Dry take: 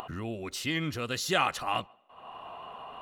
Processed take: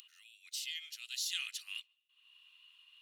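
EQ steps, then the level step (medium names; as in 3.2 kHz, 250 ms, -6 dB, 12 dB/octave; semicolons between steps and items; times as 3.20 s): inverse Chebyshev high-pass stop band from 490 Hz, stop band 80 dB; -2.5 dB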